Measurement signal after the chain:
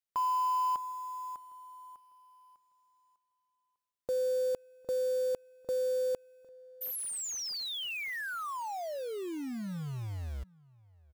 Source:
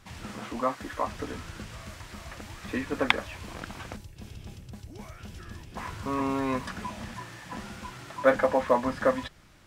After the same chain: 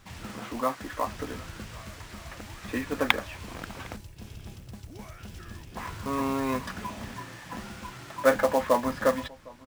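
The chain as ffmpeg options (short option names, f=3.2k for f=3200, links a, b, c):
-filter_complex "[0:a]acrusher=bits=4:mode=log:mix=0:aa=0.000001,asplit=2[a][b];[b]adelay=758,volume=-23dB,highshelf=f=4k:g=-17.1[c];[a][c]amix=inputs=2:normalize=0"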